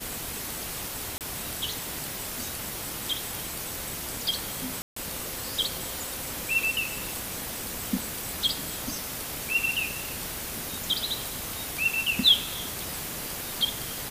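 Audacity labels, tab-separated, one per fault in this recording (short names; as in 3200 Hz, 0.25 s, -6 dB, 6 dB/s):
1.180000	1.210000	gap 28 ms
4.820000	4.960000	gap 0.144 s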